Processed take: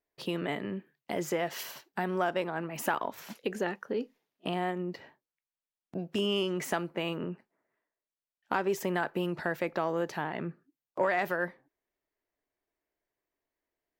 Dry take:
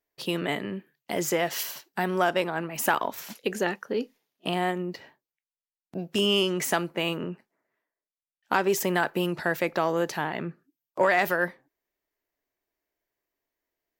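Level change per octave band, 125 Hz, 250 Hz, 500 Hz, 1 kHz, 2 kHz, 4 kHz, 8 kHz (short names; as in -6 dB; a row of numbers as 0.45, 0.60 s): -4.0, -4.0, -5.0, -5.5, -7.0, -8.5, -10.0 dB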